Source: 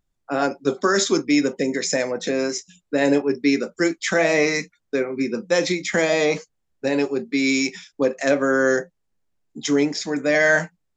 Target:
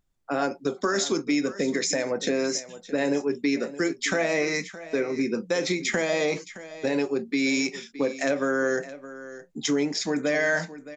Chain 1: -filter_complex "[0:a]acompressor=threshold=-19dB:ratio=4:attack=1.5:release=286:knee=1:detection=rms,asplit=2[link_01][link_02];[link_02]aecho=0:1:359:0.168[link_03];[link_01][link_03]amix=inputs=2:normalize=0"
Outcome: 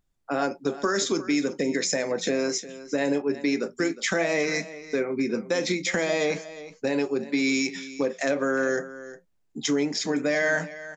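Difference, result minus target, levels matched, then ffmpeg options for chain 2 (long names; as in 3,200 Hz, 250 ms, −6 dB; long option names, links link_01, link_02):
echo 259 ms early
-filter_complex "[0:a]acompressor=threshold=-19dB:ratio=4:attack=1.5:release=286:knee=1:detection=rms,asplit=2[link_01][link_02];[link_02]aecho=0:1:618:0.168[link_03];[link_01][link_03]amix=inputs=2:normalize=0"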